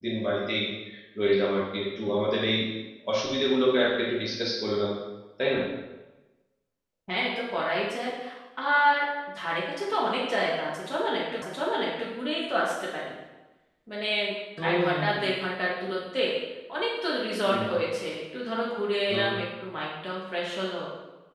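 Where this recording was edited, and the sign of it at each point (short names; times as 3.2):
11.42 repeat of the last 0.67 s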